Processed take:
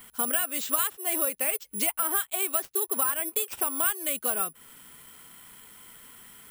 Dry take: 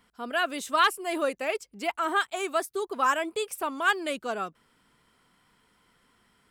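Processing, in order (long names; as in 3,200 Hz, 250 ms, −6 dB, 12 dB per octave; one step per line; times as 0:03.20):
parametric band 3,100 Hz +6.5 dB 1.7 octaves
downward compressor 10 to 1, threshold −38 dBFS, peak gain reduction 23.5 dB
high-frequency loss of the air 55 metres
bad sample-rate conversion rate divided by 4×, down none, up zero stuff
level +8 dB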